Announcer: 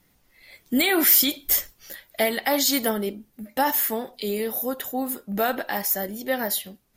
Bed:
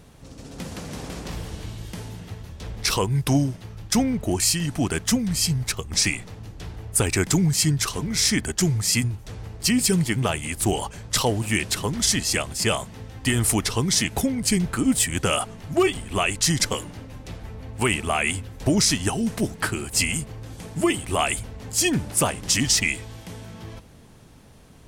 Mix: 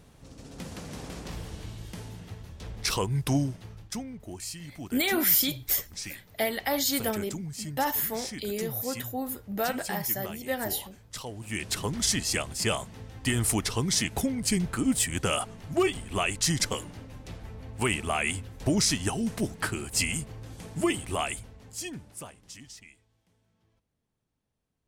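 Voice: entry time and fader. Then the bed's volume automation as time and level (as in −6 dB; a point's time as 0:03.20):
4.20 s, −5.5 dB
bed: 0:03.72 −5.5 dB
0:04.02 −17 dB
0:11.32 −17 dB
0:11.74 −5 dB
0:21.03 −5 dB
0:23.09 −32.5 dB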